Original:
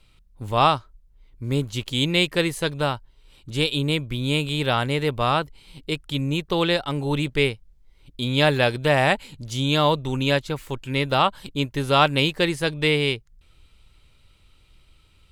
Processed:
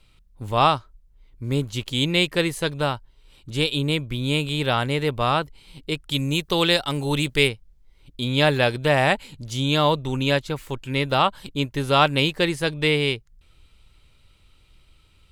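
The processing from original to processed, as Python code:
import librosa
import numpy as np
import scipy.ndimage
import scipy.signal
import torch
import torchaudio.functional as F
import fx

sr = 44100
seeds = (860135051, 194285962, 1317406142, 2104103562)

y = fx.high_shelf(x, sr, hz=3500.0, db=10.5, at=(6.1, 7.47), fade=0.02)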